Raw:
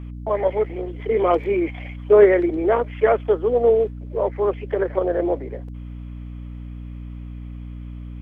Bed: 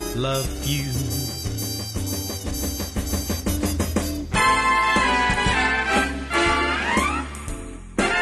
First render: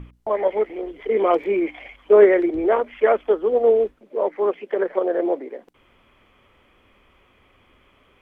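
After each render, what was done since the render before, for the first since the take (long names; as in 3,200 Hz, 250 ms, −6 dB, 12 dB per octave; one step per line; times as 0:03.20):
mains-hum notches 60/120/180/240/300 Hz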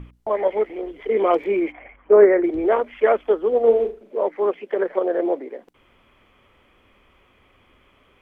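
0:01.72–0:02.44: low-pass filter 2,000 Hz 24 dB per octave
0:03.61–0:04.17: flutter between parallel walls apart 6.7 metres, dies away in 0.31 s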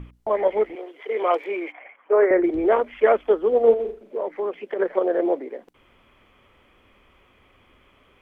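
0:00.75–0:02.31: high-pass filter 560 Hz
0:03.73–0:04.80: downward compressor, threshold −22 dBFS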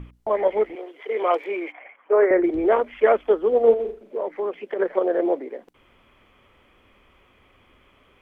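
no processing that can be heard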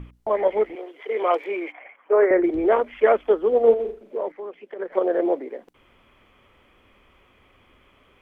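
0:04.32–0:04.92: clip gain −8 dB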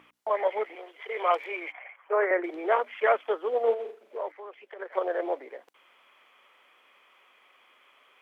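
high-pass filter 750 Hz 12 dB per octave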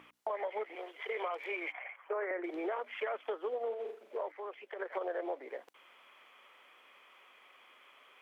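brickwall limiter −19.5 dBFS, peak gain reduction 8 dB
downward compressor 6 to 1, threshold −34 dBFS, peak gain reduction 10.5 dB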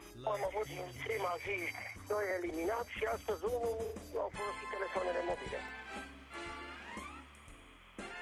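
mix in bed −26 dB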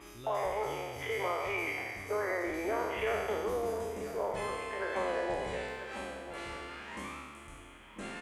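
peak hold with a decay on every bin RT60 1.49 s
slap from a distant wall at 170 metres, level −11 dB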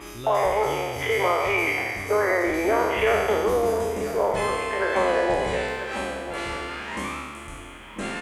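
level +11.5 dB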